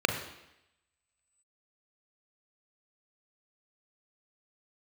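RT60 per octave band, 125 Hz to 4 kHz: 0.75, 0.85, 0.85, 0.85, 0.95, 0.90 seconds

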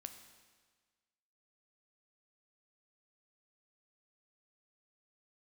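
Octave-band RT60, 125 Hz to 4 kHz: 1.5, 1.5, 1.5, 1.5, 1.5, 1.4 seconds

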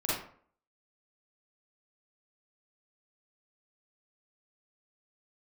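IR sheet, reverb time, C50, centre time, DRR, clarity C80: 0.55 s, −1.5 dB, 60 ms, −9.0 dB, 5.5 dB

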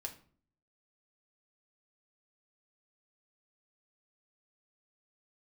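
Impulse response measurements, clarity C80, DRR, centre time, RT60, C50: 17.5 dB, 1.5 dB, 10 ms, 0.45 s, 13.0 dB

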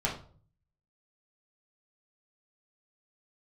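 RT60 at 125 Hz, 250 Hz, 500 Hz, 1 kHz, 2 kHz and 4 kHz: 0.85, 0.60, 0.50, 0.40, 0.35, 0.30 seconds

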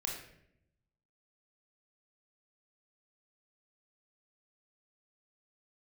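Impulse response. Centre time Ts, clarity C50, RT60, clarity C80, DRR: 38 ms, 4.0 dB, 0.75 s, 7.5 dB, −1.0 dB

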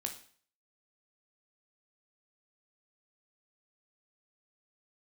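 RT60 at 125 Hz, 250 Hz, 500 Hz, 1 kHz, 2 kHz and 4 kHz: 0.55, 0.50, 0.50, 0.50, 0.50, 0.50 seconds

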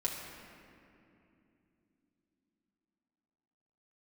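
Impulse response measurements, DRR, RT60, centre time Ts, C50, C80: −4.0 dB, 2.8 s, 88 ms, 2.5 dB, 3.5 dB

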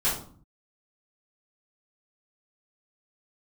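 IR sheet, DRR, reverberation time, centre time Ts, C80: −12.0 dB, 0.50 s, 36 ms, 10.5 dB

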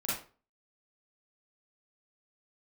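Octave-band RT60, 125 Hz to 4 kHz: 0.45, 0.35, 0.40, 0.35, 0.30, 0.30 seconds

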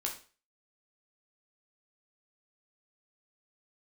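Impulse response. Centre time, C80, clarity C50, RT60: 21 ms, 14.0 dB, 8.5 dB, 0.40 s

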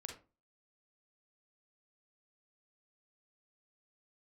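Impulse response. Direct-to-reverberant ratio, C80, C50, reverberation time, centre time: 2.0 dB, 13.5 dB, 6.5 dB, 0.30 s, 22 ms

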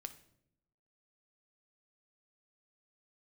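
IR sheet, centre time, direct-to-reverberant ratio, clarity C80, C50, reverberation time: 6 ms, 8.5 dB, 17.0 dB, 13.5 dB, non-exponential decay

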